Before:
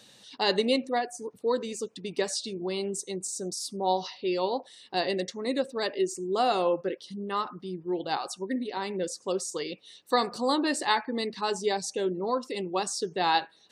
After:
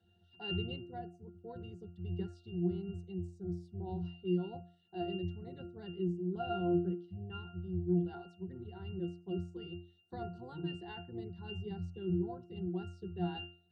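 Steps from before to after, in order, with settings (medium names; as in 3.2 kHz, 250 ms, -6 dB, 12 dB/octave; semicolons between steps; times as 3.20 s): octave divider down 1 oct, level +1 dB; dynamic bell 710 Hz, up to -6 dB, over -44 dBFS, Q 4; pitch-class resonator F, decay 0.42 s; trim +6 dB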